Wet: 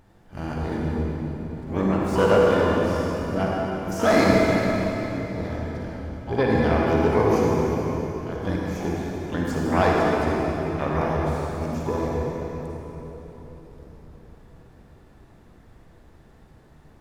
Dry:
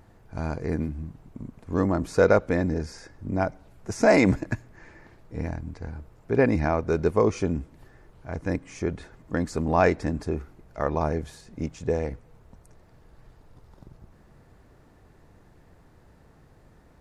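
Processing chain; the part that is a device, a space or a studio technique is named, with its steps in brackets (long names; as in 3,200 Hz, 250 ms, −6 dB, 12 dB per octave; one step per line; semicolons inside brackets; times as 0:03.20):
shimmer-style reverb (pitch-shifted copies added +12 semitones −9 dB; convolution reverb RT60 4.1 s, pre-delay 41 ms, DRR −3.5 dB)
level −3 dB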